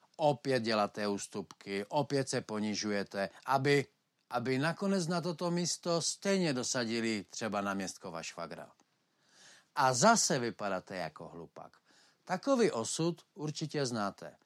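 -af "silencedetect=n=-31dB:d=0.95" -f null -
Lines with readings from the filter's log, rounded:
silence_start: 8.54
silence_end: 9.77 | silence_duration: 1.23
silence_start: 11.07
silence_end: 12.30 | silence_duration: 1.23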